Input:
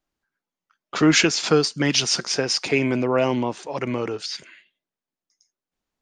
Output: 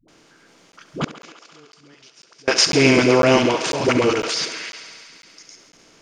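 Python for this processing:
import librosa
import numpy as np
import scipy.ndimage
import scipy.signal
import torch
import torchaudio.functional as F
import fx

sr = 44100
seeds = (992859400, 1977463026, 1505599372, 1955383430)

y = fx.bin_compress(x, sr, power=0.6)
y = fx.level_steps(y, sr, step_db=10)
y = fx.dispersion(y, sr, late='highs', ms=83.0, hz=380.0)
y = fx.gate_flip(y, sr, shuts_db=-19.0, range_db=-34, at=(1.04, 2.48))
y = fx.echo_thinned(y, sr, ms=69, feedback_pct=84, hz=300.0, wet_db=-12.5)
y = fx.buffer_crackle(y, sr, first_s=0.72, period_s=0.5, block=512, kind='zero')
y = fx.band_squash(y, sr, depth_pct=100, at=(3.88, 4.3))
y = y * librosa.db_to_amplitude(6.5)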